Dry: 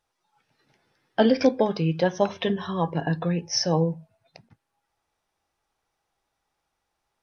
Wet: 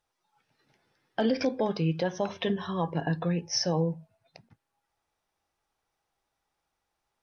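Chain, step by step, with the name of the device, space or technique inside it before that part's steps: clipper into limiter (hard clipper -7 dBFS, distortion -42 dB; peak limiter -14 dBFS, peak gain reduction 7 dB); trim -3 dB

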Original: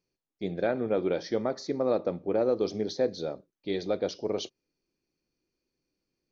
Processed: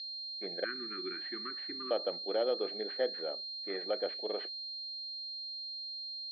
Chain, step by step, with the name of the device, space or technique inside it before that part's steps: 0.64–1.91 s: Chebyshev band-stop 370–1100 Hz, order 4; toy sound module (decimation joined by straight lines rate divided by 4×; class-D stage that switches slowly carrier 4.2 kHz; cabinet simulation 610–4400 Hz, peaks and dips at 1 kHz -9 dB, 1.8 kHz +7 dB, 2.8 kHz -3 dB)

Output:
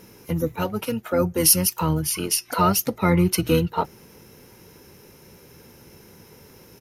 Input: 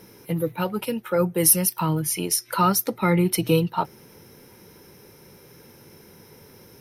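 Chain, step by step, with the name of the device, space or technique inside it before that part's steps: octave pedal (harmony voices -12 st -8 dB)

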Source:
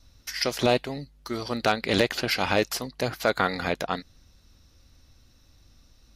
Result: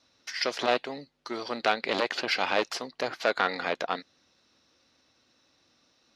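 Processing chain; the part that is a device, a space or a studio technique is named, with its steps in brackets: public-address speaker with an overloaded transformer (transformer saturation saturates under 1.5 kHz; band-pass 320–5000 Hz)

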